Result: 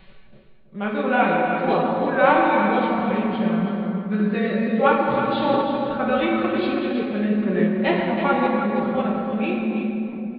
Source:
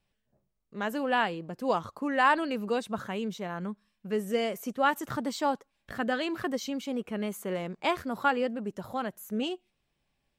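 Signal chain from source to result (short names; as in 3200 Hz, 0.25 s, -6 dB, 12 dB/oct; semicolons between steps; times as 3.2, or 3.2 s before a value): comb 5.3 ms, depth 58%; shoebox room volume 150 m³, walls hard, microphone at 0.64 m; reverse; upward compressor, threshold -28 dBFS; reverse; downsampling 11025 Hz; formant shift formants -3 st; on a send: echo 0.326 s -8.5 dB; on the sum: gain +3 dB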